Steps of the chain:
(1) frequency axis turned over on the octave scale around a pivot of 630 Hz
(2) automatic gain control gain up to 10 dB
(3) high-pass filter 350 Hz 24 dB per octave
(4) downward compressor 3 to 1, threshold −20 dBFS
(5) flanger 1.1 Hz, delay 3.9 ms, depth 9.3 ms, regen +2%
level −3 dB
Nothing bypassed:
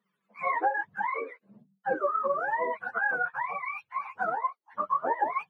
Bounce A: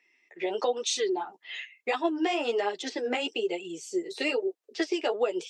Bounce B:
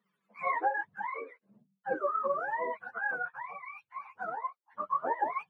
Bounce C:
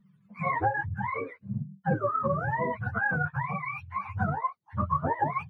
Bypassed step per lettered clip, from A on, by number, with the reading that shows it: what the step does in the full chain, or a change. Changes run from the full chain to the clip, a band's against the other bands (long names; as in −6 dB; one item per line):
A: 1, 250 Hz band +19.5 dB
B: 2, change in momentary loudness spread +5 LU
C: 3, 250 Hz band +12.0 dB